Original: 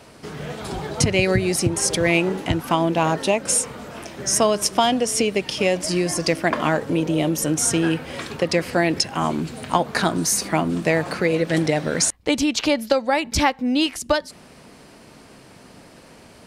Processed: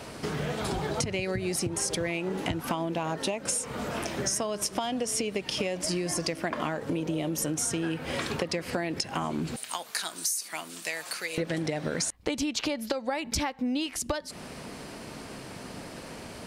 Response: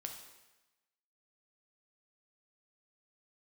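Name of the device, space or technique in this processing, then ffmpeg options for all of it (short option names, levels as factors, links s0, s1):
serial compression, leveller first: -filter_complex "[0:a]asettb=1/sr,asplit=3[s0][s1][s2];[s0]atrim=end=9.564[s3];[s1]atrim=start=9.56:end=11.38,asetpts=PTS-STARTPTS,afade=t=in:d=0.004:c=qsin,afade=t=out:st=1.816:d=0.004:c=qsin,aderivative[s4];[s2]atrim=start=11.376[s5];[s3][s4]acrossfade=d=0.004:c1=hsin:c2=qsin[s6];[s6][s5]acrossfade=d=0.004:c1=qsin:c2=hsin,acompressor=threshold=0.0794:ratio=2.5,acompressor=threshold=0.0224:ratio=4,volume=1.68"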